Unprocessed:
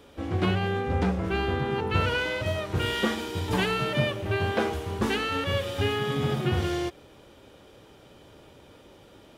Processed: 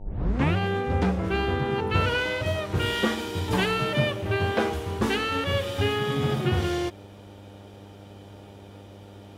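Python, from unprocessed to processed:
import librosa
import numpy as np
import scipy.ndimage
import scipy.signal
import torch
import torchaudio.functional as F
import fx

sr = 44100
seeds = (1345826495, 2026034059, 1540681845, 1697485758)

y = fx.tape_start_head(x, sr, length_s=0.56)
y = fx.dmg_buzz(y, sr, base_hz=100.0, harmonics=9, level_db=-48.0, tilt_db=-5, odd_only=False)
y = y * librosa.db_to_amplitude(1.5)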